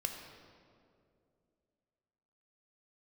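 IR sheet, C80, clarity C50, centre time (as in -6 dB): 6.0 dB, 5.0 dB, 50 ms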